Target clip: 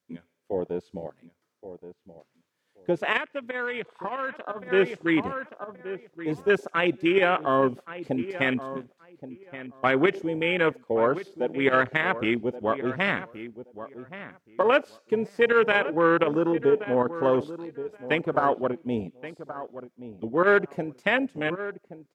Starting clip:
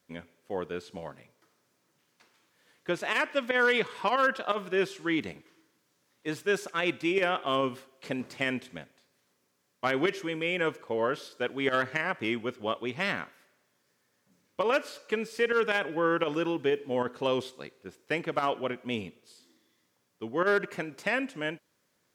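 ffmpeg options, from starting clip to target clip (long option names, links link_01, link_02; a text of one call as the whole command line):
ffmpeg -i in.wav -filter_complex "[0:a]afwtdn=0.0251,asplit=2[link_01][link_02];[link_02]adelay=1125,lowpass=frequency=1900:poles=1,volume=-13dB,asplit=2[link_03][link_04];[link_04]adelay=1125,lowpass=frequency=1900:poles=1,volume=0.18[link_05];[link_01][link_03][link_05]amix=inputs=3:normalize=0,asettb=1/sr,asplit=3[link_06][link_07][link_08];[link_06]atrim=end=3.174[link_09];[link_07]atrim=start=3.17:end=4.7,asetpts=PTS-STARTPTS,afade=type=in:duration=0.004:curve=qsin,afade=type=out:start_time=1.526:duration=0.004:curve=qsin,acompressor=threshold=-44dB:ratio=2[link_10];[link_08]atrim=start=4.696[link_11];[link_09][link_10]acrossfade=duration=0.004:curve1=hsin:curve2=qsin[link_12];[link_12][link_11]acrossfade=duration=0.004:curve1=qsin:curve2=hsin,volume=6dB" out.wav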